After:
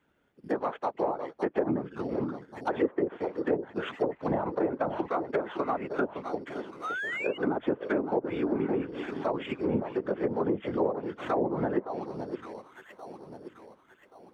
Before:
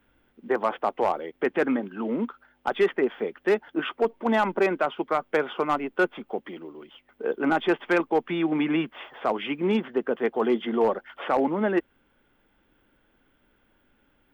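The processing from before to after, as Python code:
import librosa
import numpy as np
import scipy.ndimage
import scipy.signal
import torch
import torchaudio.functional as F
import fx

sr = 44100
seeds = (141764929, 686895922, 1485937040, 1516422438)

p1 = fx.whisperise(x, sr, seeds[0])
p2 = p1 + fx.echo_alternate(p1, sr, ms=564, hz=1100.0, feedback_pct=60, wet_db=-8.0, dry=0)
p3 = fx.spec_paint(p2, sr, seeds[1], shape='rise', start_s=6.83, length_s=0.55, low_hz=1200.0, high_hz=3000.0, level_db=-28.0)
p4 = fx.sample_hold(p3, sr, seeds[2], rate_hz=5000.0, jitter_pct=0)
p5 = p3 + F.gain(torch.from_numpy(p4), -10.0).numpy()
p6 = fx.highpass(p5, sr, hz=120.0, slope=6)
p7 = fx.env_lowpass_down(p6, sr, base_hz=710.0, full_db=-16.0)
y = F.gain(torch.from_numpy(p7), -6.5).numpy()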